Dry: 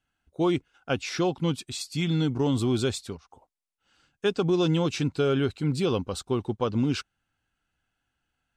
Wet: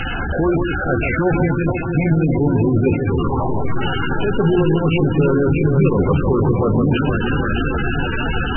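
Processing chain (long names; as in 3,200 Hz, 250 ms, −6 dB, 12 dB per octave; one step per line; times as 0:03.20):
converter with a step at zero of −30 dBFS
0:00.91–0:02.11: low-pass filter 2,800 Hz 12 dB per octave
low-shelf EQ 100 Hz +6.5 dB
mains-hum notches 60/120/180/240/300 Hz
in parallel at −1 dB: downward compressor 16 to 1, threshold −31 dBFS, peak gain reduction 14 dB
on the sum: brickwall limiter −18.5 dBFS, peak gain reduction 8 dB
on a send: delay that swaps between a low-pass and a high-pass 156 ms, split 1,600 Hz, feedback 89%, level −4.5 dB
on the sum: level +8 dB
MP3 8 kbit/s 22,050 Hz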